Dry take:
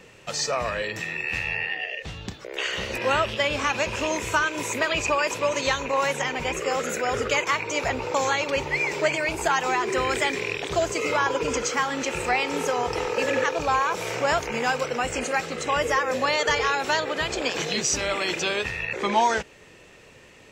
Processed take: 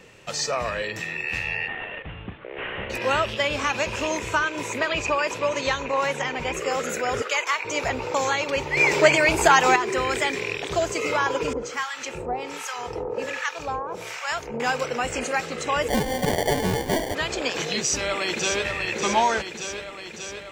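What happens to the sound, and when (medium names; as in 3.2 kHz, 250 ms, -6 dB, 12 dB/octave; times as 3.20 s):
1.68–2.90 s: CVSD coder 16 kbps
4.19–6.54 s: treble shelf 7.9 kHz -10 dB
7.22–7.65 s: high-pass 650 Hz
8.77–9.76 s: gain +7 dB
11.53–14.60 s: harmonic tremolo 1.3 Hz, depth 100%, crossover 910 Hz
15.88–17.15 s: sample-rate reducer 1.3 kHz
17.77–18.65 s: echo throw 590 ms, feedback 70%, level -5.5 dB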